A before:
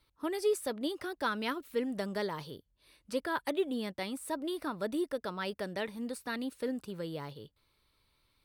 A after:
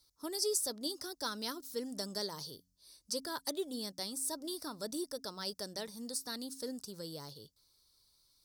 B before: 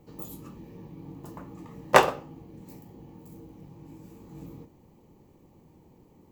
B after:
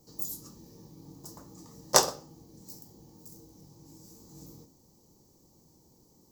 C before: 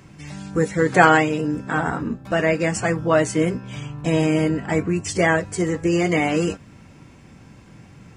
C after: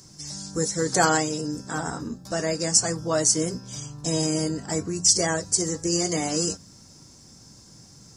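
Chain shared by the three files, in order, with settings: resonant high shelf 3.7 kHz +13.5 dB, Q 3; de-hum 89.31 Hz, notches 3; trim -6.5 dB

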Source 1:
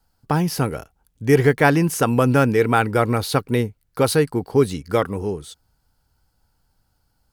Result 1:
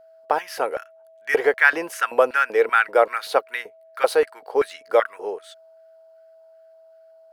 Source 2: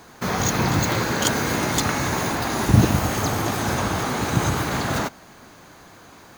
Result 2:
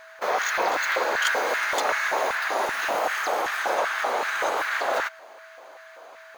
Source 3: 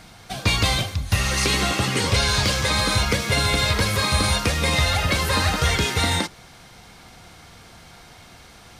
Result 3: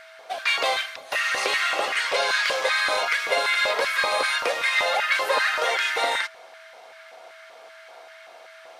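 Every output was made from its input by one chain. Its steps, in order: tone controls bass -14 dB, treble -9 dB; LFO high-pass square 2.6 Hz 560–1600 Hz; whistle 650 Hz -47 dBFS; trim -1 dB

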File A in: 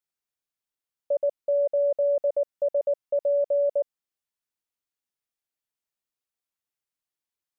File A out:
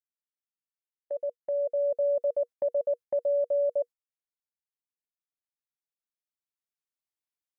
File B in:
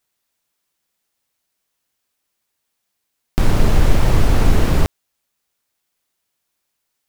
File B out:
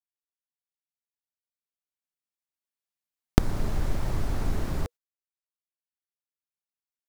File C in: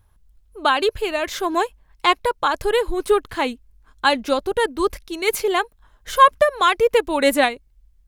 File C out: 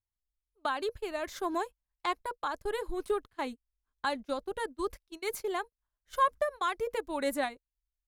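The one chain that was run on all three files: recorder AGC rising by 5.7 dB/s; band-stop 480 Hz, Q 14; gate -25 dBFS, range -23 dB; dynamic bell 2.8 kHz, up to -7 dB, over -37 dBFS, Q 1.9; trim -14 dB

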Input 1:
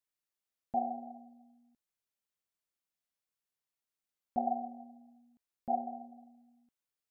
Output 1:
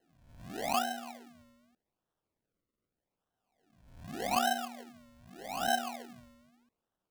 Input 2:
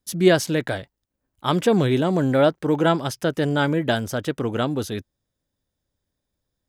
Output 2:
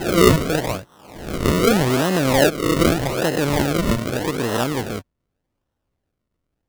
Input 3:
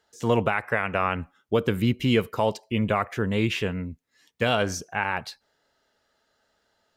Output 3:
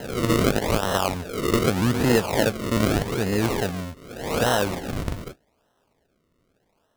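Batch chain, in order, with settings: reverse spectral sustain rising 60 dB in 0.93 s; decimation with a swept rate 37×, swing 100% 0.83 Hz

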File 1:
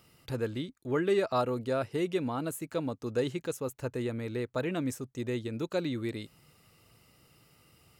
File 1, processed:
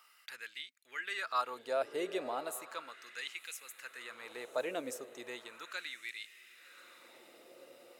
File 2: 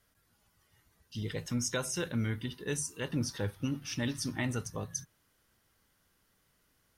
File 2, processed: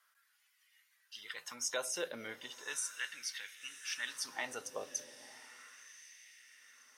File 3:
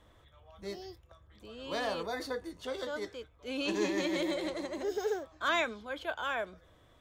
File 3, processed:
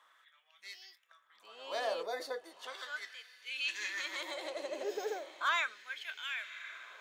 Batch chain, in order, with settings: dynamic bell 860 Hz, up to -6 dB, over -46 dBFS, Q 0.94; echo that smears into a reverb 1071 ms, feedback 47%, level -13.5 dB; LFO high-pass sine 0.36 Hz 570–2200 Hz; trim -2 dB

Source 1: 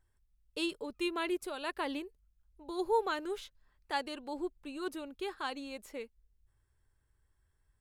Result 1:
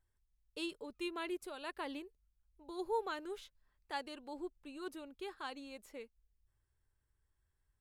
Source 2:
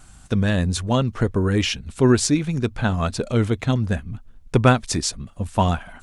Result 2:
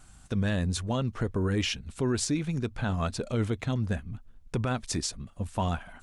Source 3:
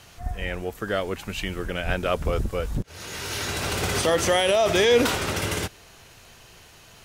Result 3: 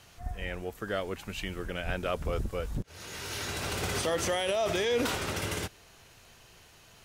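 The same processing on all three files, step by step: peak limiter -12.5 dBFS; trim -6.5 dB

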